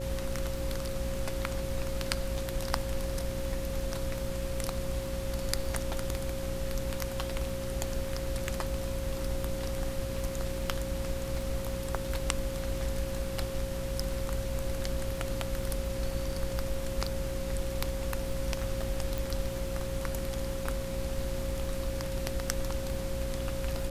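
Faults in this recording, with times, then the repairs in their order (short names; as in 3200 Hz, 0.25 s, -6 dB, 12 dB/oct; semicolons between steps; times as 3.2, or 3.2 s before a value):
crackle 31/s -39 dBFS
hum 60 Hz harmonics 6 -38 dBFS
tone 540 Hz -37 dBFS
19.18 pop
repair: de-click; de-hum 60 Hz, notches 6; notch 540 Hz, Q 30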